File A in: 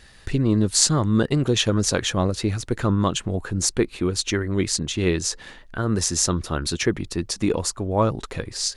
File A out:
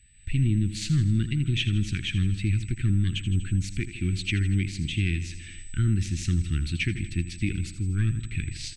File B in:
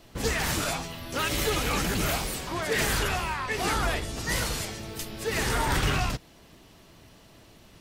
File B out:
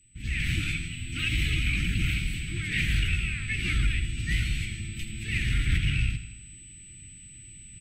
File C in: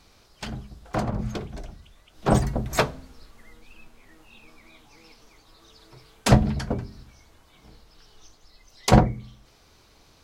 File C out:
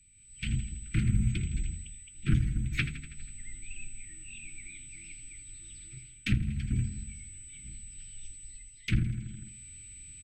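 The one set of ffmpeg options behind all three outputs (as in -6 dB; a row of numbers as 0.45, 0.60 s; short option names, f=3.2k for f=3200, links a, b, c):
-af "firequalizer=gain_entry='entry(100,0);entry(270,-13);entry(570,1);entry(1600,-16);entry(2300,1);entry(5000,-18)':delay=0.05:min_phase=1,aeval=exprs='(tanh(3.16*val(0)+0.7)-tanh(0.7))/3.16':c=same,aecho=1:1:81|162|243|324|405|486:0.224|0.128|0.0727|0.0415|0.0236|0.0135,aeval=exprs='val(0)+0.00251*sin(2*PI*8000*n/s)':c=same,dynaudnorm=f=130:g=5:m=14dB,asuperstop=centerf=700:order=12:qfactor=0.59,alimiter=limit=-11.5dB:level=0:latency=1:release=458,highshelf=f=6.3k:g=-8.5,volume=-3dB"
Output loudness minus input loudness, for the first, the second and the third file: -4.5, -0.5, -10.5 LU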